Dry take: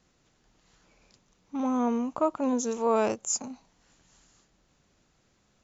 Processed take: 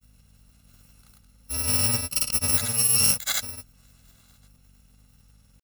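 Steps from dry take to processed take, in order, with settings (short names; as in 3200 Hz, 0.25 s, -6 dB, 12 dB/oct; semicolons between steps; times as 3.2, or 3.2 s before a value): FFT order left unsorted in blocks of 128 samples; hum 50 Hz, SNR 31 dB; grains, pitch spread up and down by 0 st; gain +7 dB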